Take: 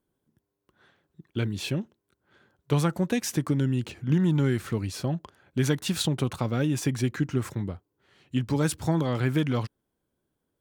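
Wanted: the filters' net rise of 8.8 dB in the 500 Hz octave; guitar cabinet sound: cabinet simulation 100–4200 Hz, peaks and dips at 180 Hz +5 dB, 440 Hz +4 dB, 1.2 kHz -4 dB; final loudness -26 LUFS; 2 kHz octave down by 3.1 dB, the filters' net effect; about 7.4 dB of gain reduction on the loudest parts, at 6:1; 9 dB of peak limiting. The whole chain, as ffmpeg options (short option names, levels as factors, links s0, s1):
-af "equalizer=f=500:t=o:g=8,equalizer=f=2000:t=o:g=-4,acompressor=threshold=0.0562:ratio=6,alimiter=limit=0.0841:level=0:latency=1,highpass=100,equalizer=f=180:t=q:w=4:g=5,equalizer=f=440:t=q:w=4:g=4,equalizer=f=1200:t=q:w=4:g=-4,lowpass=f=4200:w=0.5412,lowpass=f=4200:w=1.3066,volume=2"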